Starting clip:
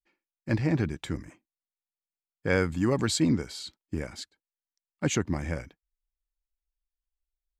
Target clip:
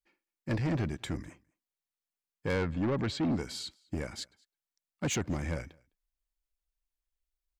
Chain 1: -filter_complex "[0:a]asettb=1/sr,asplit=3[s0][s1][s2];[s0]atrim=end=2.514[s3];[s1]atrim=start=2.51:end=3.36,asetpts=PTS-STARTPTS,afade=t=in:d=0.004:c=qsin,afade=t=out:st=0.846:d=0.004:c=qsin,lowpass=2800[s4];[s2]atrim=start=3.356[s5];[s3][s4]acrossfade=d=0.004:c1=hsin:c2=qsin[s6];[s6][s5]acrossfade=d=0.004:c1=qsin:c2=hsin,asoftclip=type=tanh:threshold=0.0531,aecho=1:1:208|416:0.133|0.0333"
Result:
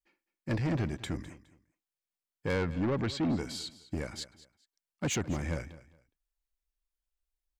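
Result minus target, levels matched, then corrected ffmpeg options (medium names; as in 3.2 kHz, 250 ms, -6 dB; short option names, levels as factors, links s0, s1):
echo-to-direct +10.5 dB
-filter_complex "[0:a]asettb=1/sr,asplit=3[s0][s1][s2];[s0]atrim=end=2.514[s3];[s1]atrim=start=2.51:end=3.36,asetpts=PTS-STARTPTS,afade=t=in:d=0.004:c=qsin,afade=t=out:st=0.846:d=0.004:c=qsin,lowpass=2800[s4];[s2]atrim=start=3.356[s5];[s3][s4]acrossfade=d=0.004:c1=hsin:c2=qsin[s6];[s6][s5]acrossfade=d=0.004:c1=qsin:c2=hsin,asoftclip=type=tanh:threshold=0.0531,aecho=1:1:208:0.0398"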